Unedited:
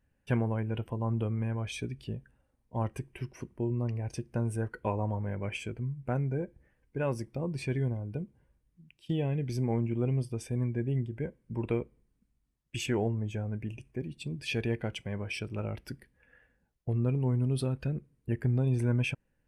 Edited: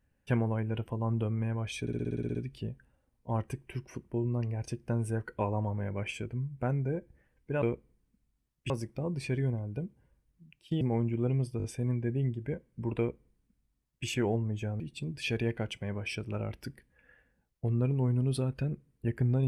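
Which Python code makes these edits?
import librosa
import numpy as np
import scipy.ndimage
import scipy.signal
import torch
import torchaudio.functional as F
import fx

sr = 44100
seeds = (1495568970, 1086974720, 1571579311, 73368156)

y = fx.edit(x, sr, fx.stutter(start_s=1.81, slice_s=0.06, count=10),
    fx.cut(start_s=9.19, length_s=0.4),
    fx.stutter(start_s=10.36, slice_s=0.02, count=4),
    fx.duplicate(start_s=11.7, length_s=1.08, to_s=7.08),
    fx.cut(start_s=13.52, length_s=0.52), tone=tone)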